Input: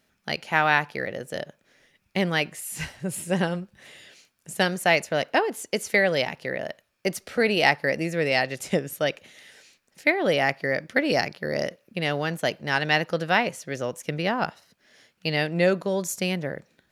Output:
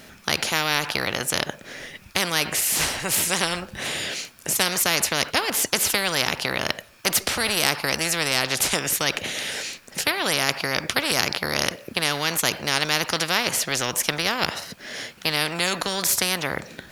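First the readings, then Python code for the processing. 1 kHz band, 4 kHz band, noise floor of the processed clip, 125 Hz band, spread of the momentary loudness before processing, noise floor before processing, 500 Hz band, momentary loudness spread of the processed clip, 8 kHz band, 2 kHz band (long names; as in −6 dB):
0.0 dB, +9.0 dB, −49 dBFS, −2.5 dB, 11 LU, −71 dBFS, −4.0 dB, 8 LU, +14.5 dB, +1.0 dB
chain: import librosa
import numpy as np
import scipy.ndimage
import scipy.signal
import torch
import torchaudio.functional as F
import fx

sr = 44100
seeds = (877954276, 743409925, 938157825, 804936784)

y = fx.spectral_comp(x, sr, ratio=4.0)
y = F.gain(torch.from_numpy(y), 3.5).numpy()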